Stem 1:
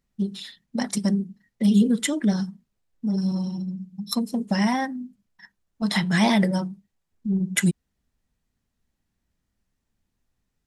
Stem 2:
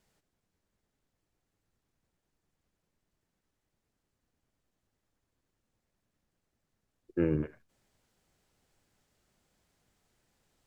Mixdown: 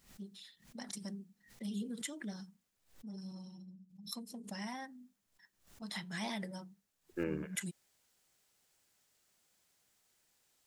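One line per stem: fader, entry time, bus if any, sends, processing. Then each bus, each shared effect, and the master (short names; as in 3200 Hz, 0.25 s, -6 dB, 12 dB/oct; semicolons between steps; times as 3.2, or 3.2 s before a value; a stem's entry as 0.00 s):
-19.0 dB, 0.00 s, no send, tilt +1.5 dB/oct; backwards sustainer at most 140 dB/s
-4.0 dB, 0.00 s, muted 2.84–4.87, no send, tilt +3 dB/oct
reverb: off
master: dry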